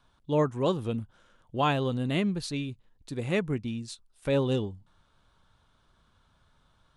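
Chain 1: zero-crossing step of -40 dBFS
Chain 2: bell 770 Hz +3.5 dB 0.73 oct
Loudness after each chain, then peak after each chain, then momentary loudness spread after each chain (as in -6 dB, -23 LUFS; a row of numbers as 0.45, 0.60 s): -29.0, -29.5 LUFS; -13.5, -11.5 dBFS; 20, 14 LU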